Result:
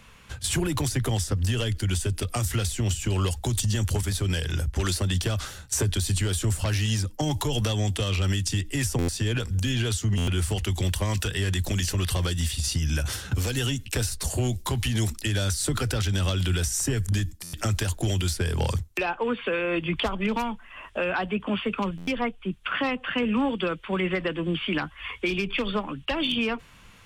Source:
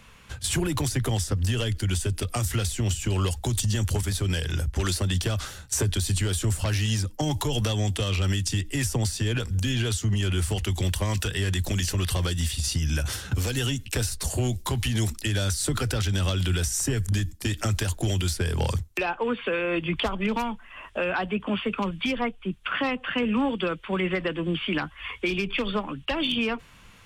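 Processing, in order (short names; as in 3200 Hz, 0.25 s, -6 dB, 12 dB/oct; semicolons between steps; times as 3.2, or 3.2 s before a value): stuck buffer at 8.98/10.17/17.43/21.97, samples 512, times 8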